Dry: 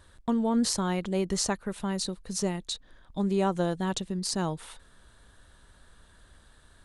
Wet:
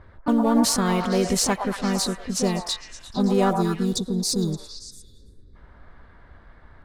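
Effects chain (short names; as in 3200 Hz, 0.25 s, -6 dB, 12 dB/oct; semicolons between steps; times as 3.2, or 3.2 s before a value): block floating point 7-bit; spectral gain 3.56–5.56, 470–3400 Hz -27 dB; low-pass opened by the level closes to 1300 Hz, open at -26.5 dBFS; in parallel at -3.5 dB: soft clip -29.5 dBFS, distortion -8 dB; on the sum: harmoniser +4 st -6 dB; on a send: delay with a stepping band-pass 0.114 s, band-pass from 870 Hz, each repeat 0.7 oct, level -2.5 dB; on the sum: gain +3 dB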